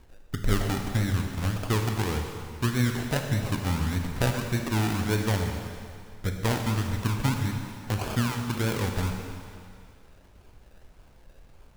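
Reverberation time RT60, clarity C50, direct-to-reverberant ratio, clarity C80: 2.3 s, 4.5 dB, 3.5 dB, 5.0 dB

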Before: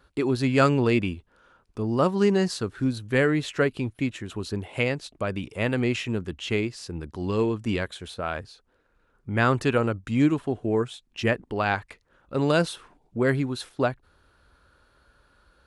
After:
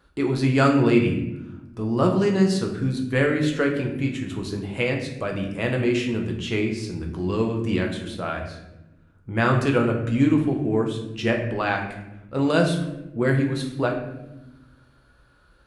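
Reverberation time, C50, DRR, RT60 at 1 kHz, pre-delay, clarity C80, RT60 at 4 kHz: 0.95 s, 6.0 dB, 1.0 dB, 0.75 s, 6 ms, 8.5 dB, 0.60 s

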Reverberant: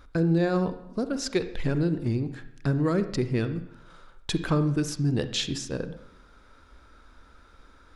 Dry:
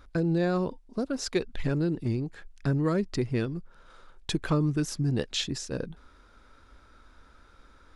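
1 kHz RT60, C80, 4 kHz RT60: 0.80 s, 14.5 dB, 0.70 s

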